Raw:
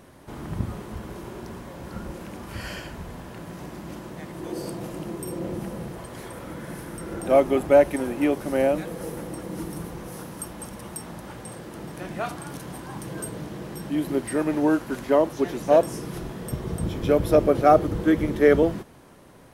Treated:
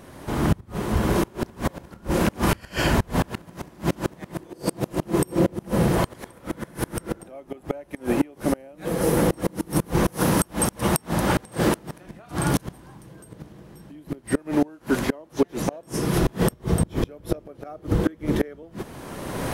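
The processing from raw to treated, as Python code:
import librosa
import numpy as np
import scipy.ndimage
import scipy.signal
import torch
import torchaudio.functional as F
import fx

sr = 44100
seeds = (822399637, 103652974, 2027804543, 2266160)

y = fx.recorder_agc(x, sr, target_db=-14.0, rise_db_per_s=24.0, max_gain_db=30)
y = fx.low_shelf(y, sr, hz=120.0, db=9.0, at=(12.06, 14.39))
y = fx.gate_flip(y, sr, shuts_db=-13.0, range_db=-28)
y = F.gain(torch.from_numpy(y), 4.0).numpy()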